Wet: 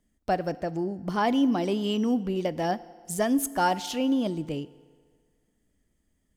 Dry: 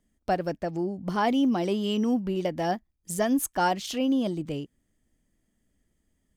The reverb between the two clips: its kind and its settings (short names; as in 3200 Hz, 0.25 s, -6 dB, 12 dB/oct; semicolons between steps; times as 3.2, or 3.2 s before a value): FDN reverb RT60 1.8 s, low-frequency decay 0.85×, high-frequency decay 0.8×, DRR 17 dB